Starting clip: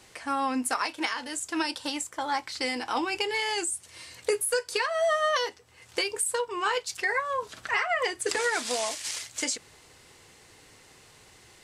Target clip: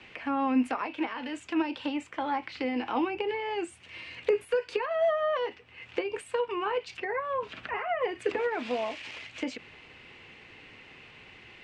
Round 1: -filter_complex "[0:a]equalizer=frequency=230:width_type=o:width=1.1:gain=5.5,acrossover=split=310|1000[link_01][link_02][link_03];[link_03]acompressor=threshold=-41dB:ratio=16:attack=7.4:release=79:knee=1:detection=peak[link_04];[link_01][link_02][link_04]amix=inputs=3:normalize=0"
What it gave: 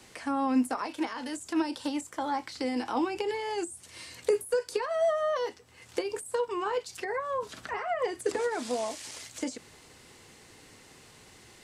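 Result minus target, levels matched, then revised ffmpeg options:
2,000 Hz band −2.5 dB
-filter_complex "[0:a]lowpass=frequency=2600:width_type=q:width=3.8,equalizer=frequency=230:width_type=o:width=1.1:gain=5.5,acrossover=split=310|1000[link_01][link_02][link_03];[link_03]acompressor=threshold=-41dB:ratio=16:attack=7.4:release=79:knee=1:detection=peak[link_04];[link_01][link_02][link_04]amix=inputs=3:normalize=0"

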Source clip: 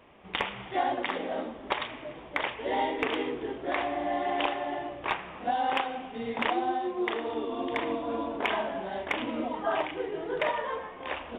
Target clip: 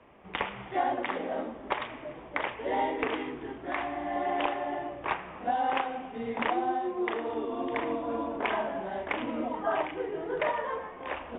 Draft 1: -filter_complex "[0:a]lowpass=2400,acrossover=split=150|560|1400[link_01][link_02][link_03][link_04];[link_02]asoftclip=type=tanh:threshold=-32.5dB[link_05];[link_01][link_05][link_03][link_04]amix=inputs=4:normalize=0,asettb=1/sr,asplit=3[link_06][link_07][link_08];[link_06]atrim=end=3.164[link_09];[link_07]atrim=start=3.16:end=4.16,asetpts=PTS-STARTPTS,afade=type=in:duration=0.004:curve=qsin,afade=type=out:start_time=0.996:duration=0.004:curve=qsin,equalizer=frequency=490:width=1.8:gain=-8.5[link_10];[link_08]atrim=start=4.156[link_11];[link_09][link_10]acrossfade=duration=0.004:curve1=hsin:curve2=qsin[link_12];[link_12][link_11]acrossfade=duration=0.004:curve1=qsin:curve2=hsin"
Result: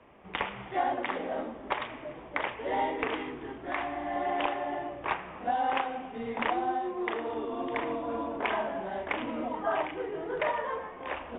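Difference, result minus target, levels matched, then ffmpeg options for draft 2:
soft clipping: distortion +14 dB
-filter_complex "[0:a]lowpass=2400,acrossover=split=150|560|1400[link_01][link_02][link_03][link_04];[link_02]asoftclip=type=tanh:threshold=-23dB[link_05];[link_01][link_05][link_03][link_04]amix=inputs=4:normalize=0,asettb=1/sr,asplit=3[link_06][link_07][link_08];[link_06]atrim=end=3.164[link_09];[link_07]atrim=start=3.16:end=4.16,asetpts=PTS-STARTPTS,afade=type=in:duration=0.004:curve=qsin,afade=type=out:start_time=0.996:duration=0.004:curve=qsin,equalizer=frequency=490:width=1.8:gain=-8.5[link_10];[link_08]atrim=start=4.156[link_11];[link_09][link_10]acrossfade=duration=0.004:curve1=hsin:curve2=qsin[link_12];[link_12][link_11]acrossfade=duration=0.004:curve1=qsin:curve2=hsin"

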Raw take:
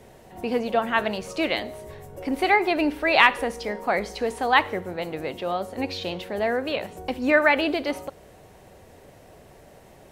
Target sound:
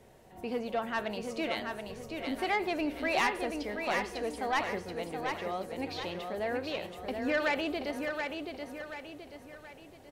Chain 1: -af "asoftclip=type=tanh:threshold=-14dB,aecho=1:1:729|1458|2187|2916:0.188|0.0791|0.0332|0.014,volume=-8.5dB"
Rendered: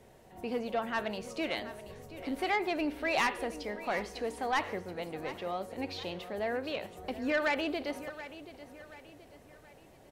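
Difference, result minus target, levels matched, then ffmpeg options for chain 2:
echo-to-direct −9 dB
-af "asoftclip=type=tanh:threshold=-14dB,aecho=1:1:729|1458|2187|2916|3645:0.531|0.223|0.0936|0.0393|0.0165,volume=-8.5dB"

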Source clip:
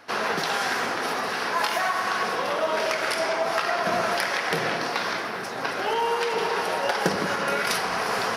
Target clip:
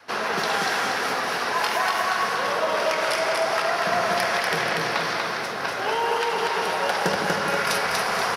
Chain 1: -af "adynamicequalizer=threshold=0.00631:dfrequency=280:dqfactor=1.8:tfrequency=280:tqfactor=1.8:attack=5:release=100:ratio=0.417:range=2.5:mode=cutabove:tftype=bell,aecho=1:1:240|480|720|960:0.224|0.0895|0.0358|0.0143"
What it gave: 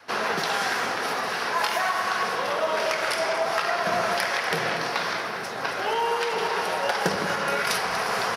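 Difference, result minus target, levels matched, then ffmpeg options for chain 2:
echo-to-direct −10.5 dB
-af "adynamicequalizer=threshold=0.00631:dfrequency=280:dqfactor=1.8:tfrequency=280:tqfactor=1.8:attack=5:release=100:ratio=0.417:range=2.5:mode=cutabove:tftype=bell,aecho=1:1:240|480|720|960|1200:0.75|0.3|0.12|0.048|0.0192"

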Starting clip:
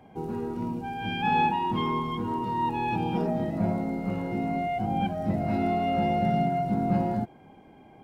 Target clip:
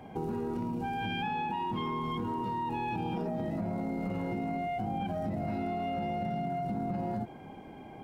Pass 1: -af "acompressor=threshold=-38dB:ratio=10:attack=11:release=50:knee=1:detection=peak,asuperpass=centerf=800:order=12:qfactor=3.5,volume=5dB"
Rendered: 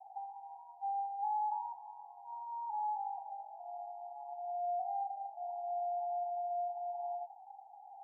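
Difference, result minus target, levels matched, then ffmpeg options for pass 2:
1,000 Hz band +4.0 dB
-af "acompressor=threshold=-38dB:ratio=10:attack=11:release=50:knee=1:detection=peak,volume=5dB"

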